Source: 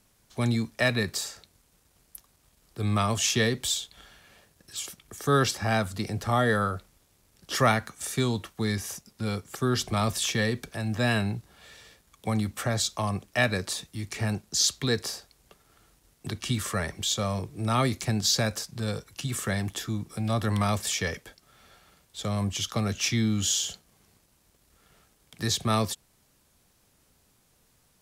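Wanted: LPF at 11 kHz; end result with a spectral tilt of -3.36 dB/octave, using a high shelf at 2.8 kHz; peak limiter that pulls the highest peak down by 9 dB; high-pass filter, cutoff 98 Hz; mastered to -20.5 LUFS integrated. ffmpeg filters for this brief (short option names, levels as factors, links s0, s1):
-af "highpass=98,lowpass=11000,highshelf=f=2800:g=5,volume=2.51,alimiter=limit=0.376:level=0:latency=1"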